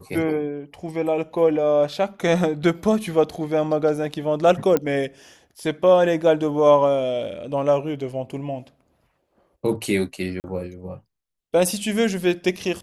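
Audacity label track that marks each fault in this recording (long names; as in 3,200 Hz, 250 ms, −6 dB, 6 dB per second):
4.770000	4.770000	click −8 dBFS
10.400000	10.440000	drop-out 39 ms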